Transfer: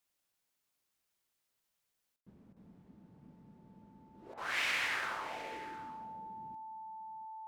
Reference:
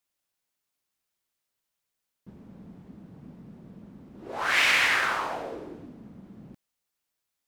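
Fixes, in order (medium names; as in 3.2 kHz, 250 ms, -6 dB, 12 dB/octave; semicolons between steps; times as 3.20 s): band-stop 880 Hz, Q 30; interpolate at 2.21/2.53/4.34 s, 33 ms; inverse comb 704 ms -16 dB; gain correction +12 dB, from 2.16 s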